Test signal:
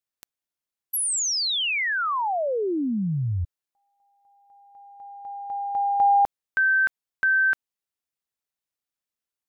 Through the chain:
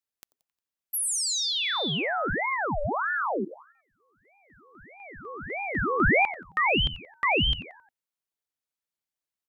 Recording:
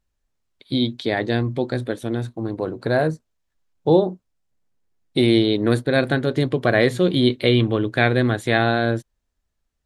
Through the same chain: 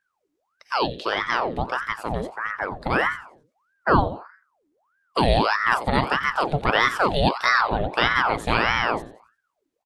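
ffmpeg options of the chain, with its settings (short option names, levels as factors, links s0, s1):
-filter_complex "[0:a]asplit=5[s0][s1][s2][s3][s4];[s1]adelay=89,afreqshift=-82,volume=0.2[s5];[s2]adelay=178,afreqshift=-164,volume=0.0776[s6];[s3]adelay=267,afreqshift=-246,volume=0.0302[s7];[s4]adelay=356,afreqshift=-328,volume=0.0119[s8];[s0][s5][s6][s7][s8]amix=inputs=5:normalize=0,aeval=exprs='val(0)*sin(2*PI*950*n/s+950*0.7/1.6*sin(2*PI*1.6*n/s))':c=same"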